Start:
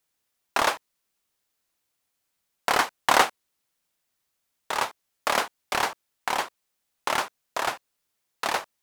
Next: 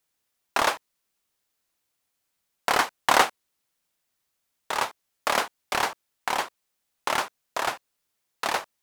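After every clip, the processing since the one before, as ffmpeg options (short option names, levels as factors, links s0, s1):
-af anull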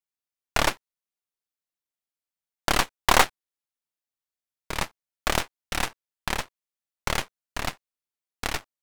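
-af "aeval=exprs='0.631*(cos(1*acos(clip(val(0)/0.631,-1,1)))-cos(1*PI/2))+0.0316*(cos(5*acos(clip(val(0)/0.631,-1,1)))-cos(5*PI/2))+0.1*(cos(7*acos(clip(val(0)/0.631,-1,1)))-cos(7*PI/2))+0.1*(cos(8*acos(clip(val(0)/0.631,-1,1)))-cos(8*PI/2))':c=same"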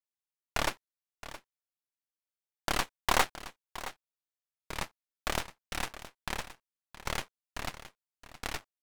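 -af "aecho=1:1:669:0.188,volume=0.398"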